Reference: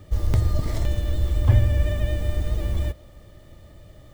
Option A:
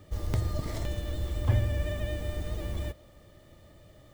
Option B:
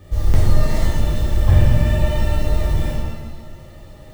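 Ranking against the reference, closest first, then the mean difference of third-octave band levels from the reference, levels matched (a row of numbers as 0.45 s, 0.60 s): A, B; 2.5 dB, 4.5 dB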